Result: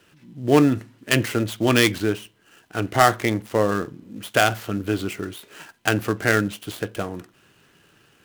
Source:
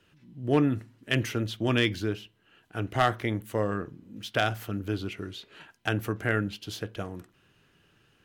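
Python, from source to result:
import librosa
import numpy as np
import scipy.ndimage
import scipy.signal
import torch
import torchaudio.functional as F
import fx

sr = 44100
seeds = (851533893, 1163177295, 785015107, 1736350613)

y = fx.dead_time(x, sr, dead_ms=0.083)
y = fx.low_shelf(y, sr, hz=110.0, db=-10.5)
y = F.gain(torch.from_numpy(y), 9.0).numpy()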